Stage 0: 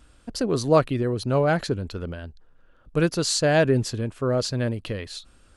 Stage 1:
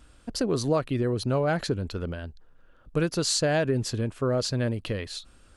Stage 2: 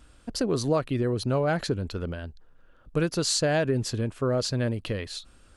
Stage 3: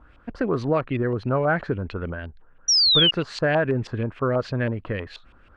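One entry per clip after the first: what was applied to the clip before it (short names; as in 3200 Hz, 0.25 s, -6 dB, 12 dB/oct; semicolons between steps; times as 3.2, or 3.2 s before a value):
compressor 5:1, threshold -21 dBFS, peak gain reduction 9 dB
nothing audible
LFO low-pass saw up 6.2 Hz 980–2800 Hz; painted sound fall, 2.68–3.11, 2800–5900 Hz -19 dBFS; gain +1.5 dB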